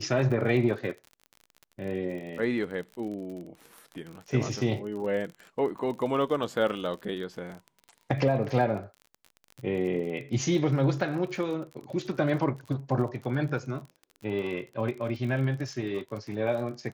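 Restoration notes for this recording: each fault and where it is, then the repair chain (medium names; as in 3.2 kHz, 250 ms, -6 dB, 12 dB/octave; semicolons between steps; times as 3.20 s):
crackle 38 per s -36 dBFS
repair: de-click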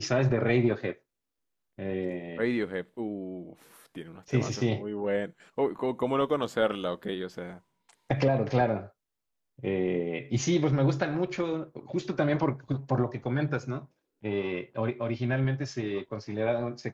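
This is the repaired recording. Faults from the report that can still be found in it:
nothing left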